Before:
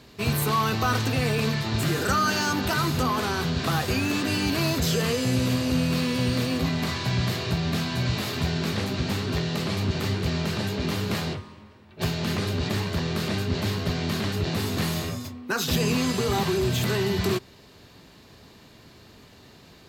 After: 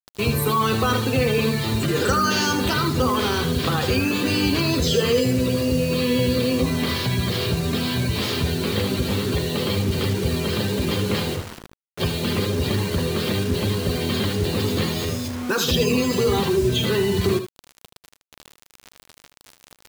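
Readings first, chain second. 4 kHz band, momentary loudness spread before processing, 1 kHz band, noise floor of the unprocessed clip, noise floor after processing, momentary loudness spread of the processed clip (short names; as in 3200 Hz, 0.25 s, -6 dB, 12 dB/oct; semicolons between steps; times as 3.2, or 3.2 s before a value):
+4.5 dB, 4 LU, +2.5 dB, -51 dBFS, -62 dBFS, 4 LU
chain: spectral gate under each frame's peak -25 dB strong; fifteen-band EQ 160 Hz -4 dB, 630 Hz -10 dB, 1600 Hz -3 dB; in parallel at +0.5 dB: compressor 6:1, threshold -36 dBFS, peak gain reduction 14 dB; on the sum: small resonant body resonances 520/3200 Hz, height 11 dB, ringing for 25 ms; bit-crush 6-bit; on a send: echo 77 ms -9.5 dB; on the sum: gain +2.5 dB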